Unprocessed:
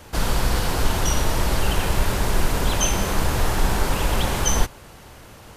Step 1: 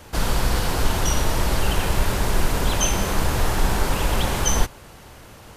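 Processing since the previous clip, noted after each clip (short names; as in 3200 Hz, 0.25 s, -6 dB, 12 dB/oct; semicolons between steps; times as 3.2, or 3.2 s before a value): nothing audible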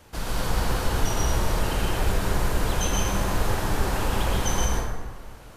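plate-style reverb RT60 1.5 s, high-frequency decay 0.45×, pre-delay 0.11 s, DRR -3.5 dB; gain -8.5 dB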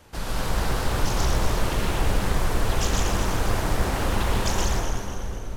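split-band echo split 570 Hz, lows 0.584 s, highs 0.248 s, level -8 dB; Doppler distortion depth 0.8 ms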